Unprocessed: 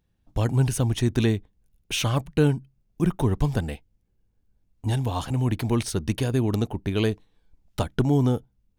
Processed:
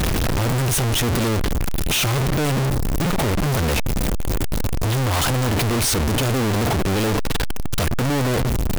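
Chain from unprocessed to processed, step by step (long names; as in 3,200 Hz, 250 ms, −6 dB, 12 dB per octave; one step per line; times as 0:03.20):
sign of each sample alone
level +6 dB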